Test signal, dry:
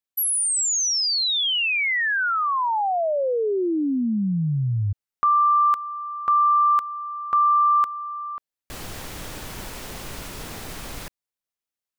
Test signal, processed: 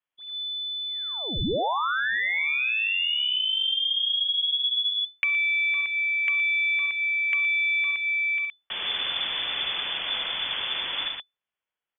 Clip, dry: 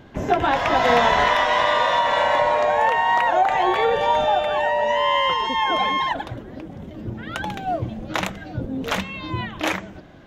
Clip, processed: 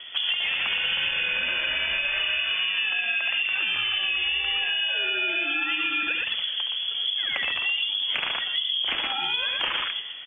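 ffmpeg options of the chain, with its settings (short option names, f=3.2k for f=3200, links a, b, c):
-filter_complex "[0:a]aeval=exprs='0.562*(cos(1*acos(clip(val(0)/0.562,-1,1)))-cos(1*PI/2))+0.0141*(cos(8*acos(clip(val(0)/0.562,-1,1)))-cos(8*PI/2))':c=same,lowpass=f=3k:t=q:w=0.5098,lowpass=f=3k:t=q:w=0.6013,lowpass=f=3k:t=q:w=0.9,lowpass=f=3k:t=q:w=2.563,afreqshift=-3500,aecho=1:1:54|68|74|118:0.1|0.316|0.133|0.562,acrossover=split=150|530|2600[a][b][c][d];[c]alimiter=limit=-17dB:level=0:latency=1:release=233[e];[a][b][e][d]amix=inputs=4:normalize=0,acompressor=threshold=-27dB:ratio=10:attack=5.4:release=264:knee=1:detection=peak,volume=5dB"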